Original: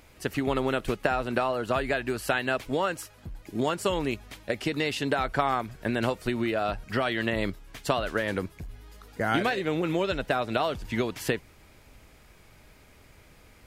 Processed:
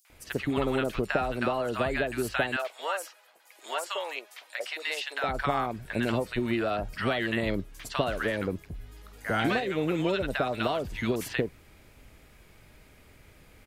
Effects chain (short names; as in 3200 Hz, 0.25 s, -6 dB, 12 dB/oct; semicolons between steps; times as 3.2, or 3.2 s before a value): 2.46–5.14 HPF 600 Hz 24 dB/oct; three bands offset in time highs, mids, lows 50/100 ms, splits 940/5600 Hz